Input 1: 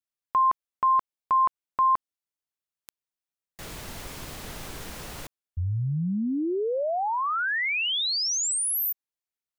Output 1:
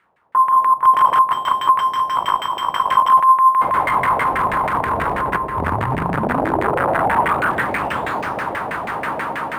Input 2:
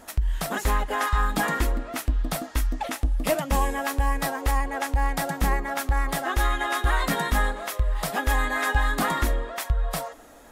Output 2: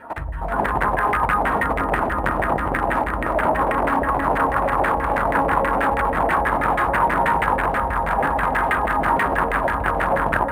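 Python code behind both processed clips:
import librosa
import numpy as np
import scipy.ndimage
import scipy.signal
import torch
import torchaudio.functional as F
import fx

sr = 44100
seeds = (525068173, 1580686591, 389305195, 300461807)

p1 = fx.fold_sine(x, sr, drive_db=3, ceiling_db=-10.5)
p2 = fx.room_shoebox(p1, sr, seeds[0], volume_m3=300.0, walls='mixed', distance_m=4.7)
p3 = fx.level_steps(p2, sr, step_db=21)
p4 = fx.hum_notches(p3, sr, base_hz=60, count=3)
p5 = fx.dmg_noise_colour(p4, sr, seeds[1], colour='white', level_db=-57.0)
p6 = p5 + fx.echo_swell(p5, sr, ms=115, loudest=8, wet_db=-14, dry=0)
p7 = (np.mod(10.0 ** (14.5 / 20.0) * p6 + 1.0, 2.0) - 1.0) / 10.0 ** (14.5 / 20.0)
p8 = fx.filter_lfo_lowpass(p7, sr, shape='saw_down', hz=6.2, low_hz=610.0, high_hz=2000.0, q=2.8)
p9 = scipy.signal.sosfilt(scipy.signal.butter(2, 65.0, 'highpass', fs=sr, output='sos'), p8)
p10 = fx.peak_eq(p9, sr, hz=940.0, db=3.5, octaves=0.4)
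y = np.interp(np.arange(len(p10)), np.arange(len(p10))[::4], p10[::4])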